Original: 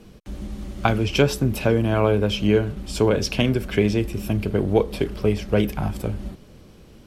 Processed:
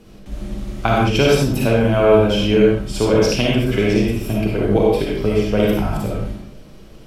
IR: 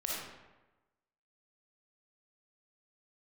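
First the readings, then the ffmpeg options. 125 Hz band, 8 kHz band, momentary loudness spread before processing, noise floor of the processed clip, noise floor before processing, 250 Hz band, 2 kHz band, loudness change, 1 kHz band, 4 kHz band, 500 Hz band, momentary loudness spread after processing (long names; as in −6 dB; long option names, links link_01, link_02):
+3.0 dB, +4.5 dB, 13 LU, −41 dBFS, −48 dBFS, +5.0 dB, +5.0 dB, +5.0 dB, +6.0 dB, +5.0 dB, +6.0 dB, 15 LU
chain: -filter_complex "[1:a]atrim=start_sample=2205,afade=type=out:start_time=0.26:duration=0.01,atrim=end_sample=11907[link_01];[0:a][link_01]afir=irnorm=-1:irlink=0,volume=2dB"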